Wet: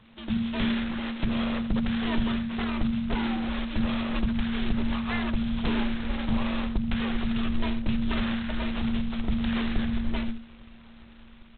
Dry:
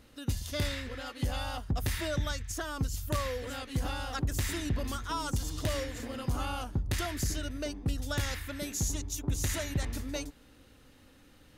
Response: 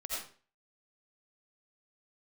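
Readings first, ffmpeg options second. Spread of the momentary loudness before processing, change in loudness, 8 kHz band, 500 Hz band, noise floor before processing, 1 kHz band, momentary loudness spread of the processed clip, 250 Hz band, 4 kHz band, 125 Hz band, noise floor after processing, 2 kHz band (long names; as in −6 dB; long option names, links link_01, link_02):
5 LU, +5.5 dB, below −40 dB, 0.0 dB, −59 dBFS, +2.5 dB, 3 LU, +13.0 dB, +3.0 dB, 0.0 dB, −50 dBFS, +4.5 dB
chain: -filter_complex "[0:a]aeval=exprs='abs(val(0))':channel_layout=same,asplit=2[link_01][link_02];[link_02]aecho=0:1:82:0.237[link_03];[link_01][link_03]amix=inputs=2:normalize=0,afreqshift=-230,dynaudnorm=framelen=120:gausssize=9:maxgain=3dB,asubboost=boost=5.5:cutoff=57,alimiter=limit=-20.5dB:level=0:latency=1:release=392,volume=4.5dB" -ar 8000 -c:a adpcm_g726 -b:a 16k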